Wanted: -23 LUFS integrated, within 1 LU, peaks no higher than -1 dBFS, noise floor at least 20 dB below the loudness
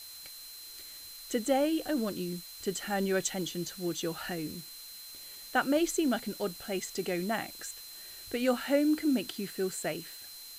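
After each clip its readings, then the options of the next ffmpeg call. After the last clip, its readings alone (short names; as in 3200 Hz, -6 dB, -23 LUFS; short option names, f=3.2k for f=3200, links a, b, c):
steady tone 4100 Hz; tone level -48 dBFS; noise floor -47 dBFS; noise floor target -52 dBFS; loudness -32.0 LUFS; peak -15.0 dBFS; loudness target -23.0 LUFS
-> -af "bandreject=f=4.1k:w=30"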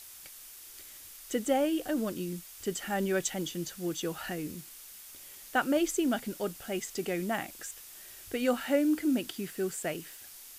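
steady tone none; noise floor -49 dBFS; noise floor target -52 dBFS
-> -af "afftdn=nr=6:nf=-49"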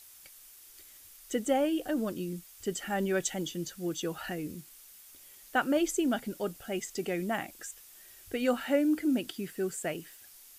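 noise floor -54 dBFS; loudness -32.5 LUFS; peak -15.5 dBFS; loudness target -23.0 LUFS
-> -af "volume=9.5dB"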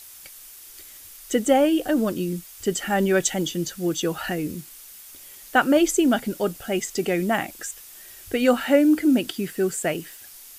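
loudness -23.0 LUFS; peak -6.0 dBFS; noise floor -45 dBFS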